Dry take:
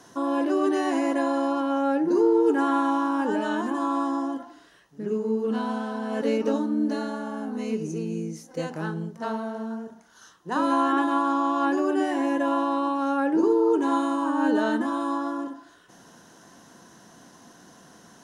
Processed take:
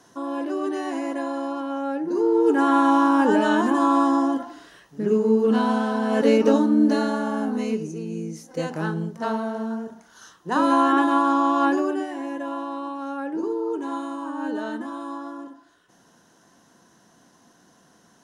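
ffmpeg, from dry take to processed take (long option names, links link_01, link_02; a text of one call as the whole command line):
ffmpeg -i in.wav -af "volume=13.5dB,afade=type=in:start_time=2.11:duration=0.92:silence=0.298538,afade=type=out:start_time=7.44:duration=0.49:silence=0.334965,afade=type=in:start_time=7.93:duration=0.88:silence=0.473151,afade=type=out:start_time=11.65:duration=0.42:silence=0.316228" out.wav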